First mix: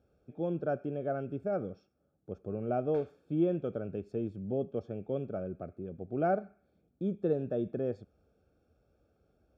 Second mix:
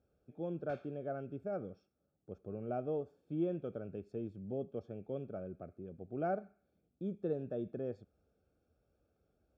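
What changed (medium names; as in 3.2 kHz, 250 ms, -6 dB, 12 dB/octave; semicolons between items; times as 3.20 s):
speech -6.5 dB; background: entry -2.25 s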